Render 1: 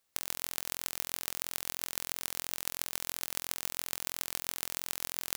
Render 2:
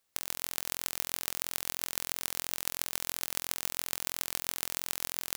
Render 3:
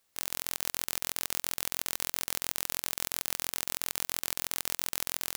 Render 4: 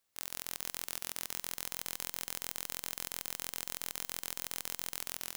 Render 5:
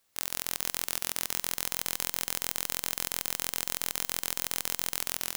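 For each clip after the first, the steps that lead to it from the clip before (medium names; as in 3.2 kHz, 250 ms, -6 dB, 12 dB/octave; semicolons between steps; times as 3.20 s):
level rider gain up to 5 dB
integer overflow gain 8 dB; trim +4 dB
Schroeder reverb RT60 3.9 s, combs from 29 ms, DRR 18.5 dB; trim -6.5 dB
recorder AGC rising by 6.8 dB/s; trim +7.5 dB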